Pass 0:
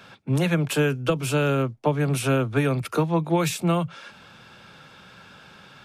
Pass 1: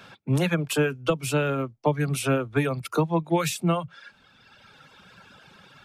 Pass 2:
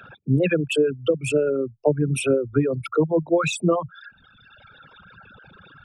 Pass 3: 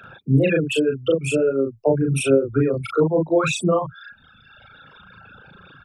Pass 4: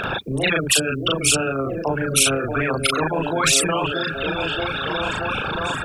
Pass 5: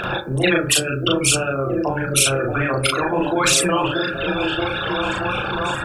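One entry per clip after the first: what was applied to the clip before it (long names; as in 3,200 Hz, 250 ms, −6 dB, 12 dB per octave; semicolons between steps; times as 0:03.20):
reverb reduction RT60 1.7 s
spectral envelope exaggerated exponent 3; level +3.5 dB
double-tracking delay 37 ms −2 dB
echo through a band-pass that steps 628 ms, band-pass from 290 Hz, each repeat 0.7 octaves, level −8.5 dB; every bin compressed towards the loudest bin 4 to 1; level +1.5 dB
convolution reverb RT60 0.45 s, pre-delay 3 ms, DRR 3.5 dB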